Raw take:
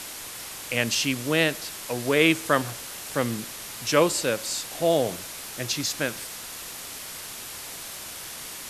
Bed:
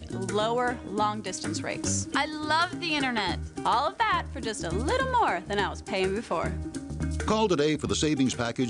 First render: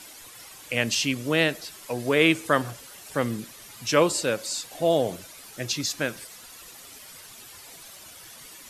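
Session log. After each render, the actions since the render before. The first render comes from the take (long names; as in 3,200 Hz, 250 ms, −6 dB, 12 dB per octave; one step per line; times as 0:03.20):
broadband denoise 11 dB, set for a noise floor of −38 dBFS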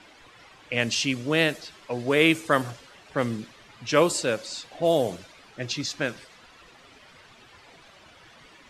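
low-pass that shuts in the quiet parts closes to 2,600 Hz, open at −16.5 dBFS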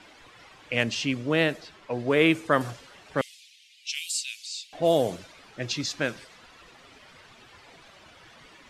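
0:00.83–0:02.61: high-shelf EQ 4,000 Hz −10 dB
0:03.21–0:04.73: Butterworth high-pass 2,400 Hz 48 dB per octave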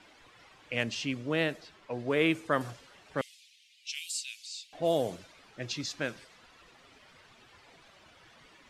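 level −6 dB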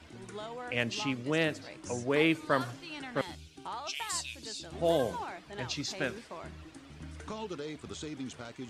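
mix in bed −15.5 dB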